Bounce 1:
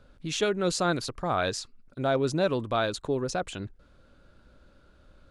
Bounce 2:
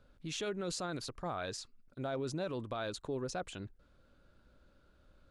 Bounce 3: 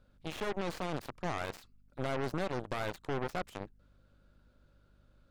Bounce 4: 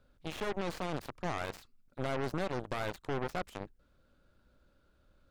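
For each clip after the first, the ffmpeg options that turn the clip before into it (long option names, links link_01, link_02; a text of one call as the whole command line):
ffmpeg -i in.wav -af "alimiter=limit=-21.5dB:level=0:latency=1:release=30,volume=-8dB" out.wav
ffmpeg -i in.wav -filter_complex "[0:a]aeval=exprs='val(0)+0.000708*(sin(2*PI*50*n/s)+sin(2*PI*2*50*n/s)/2+sin(2*PI*3*50*n/s)/3+sin(2*PI*4*50*n/s)/4+sin(2*PI*5*50*n/s)/5)':channel_layout=same,aeval=exprs='0.0355*(cos(1*acos(clip(val(0)/0.0355,-1,1)))-cos(1*PI/2))+0.0178*(cos(4*acos(clip(val(0)/0.0355,-1,1)))-cos(4*PI/2))+0.00794*(cos(6*acos(clip(val(0)/0.0355,-1,1)))-cos(6*PI/2))+0.00891*(cos(7*acos(clip(val(0)/0.0355,-1,1)))-cos(7*PI/2))':channel_layout=same,acrossover=split=3200[link_01][link_02];[link_02]acompressor=threshold=-49dB:ratio=4:attack=1:release=60[link_03];[link_01][link_03]amix=inputs=2:normalize=0" out.wav
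ffmpeg -i in.wav -af "aeval=exprs='val(0)+0.000501*(sin(2*PI*50*n/s)+sin(2*PI*2*50*n/s)/2+sin(2*PI*3*50*n/s)/3+sin(2*PI*4*50*n/s)/4+sin(2*PI*5*50*n/s)/5)':channel_layout=same" out.wav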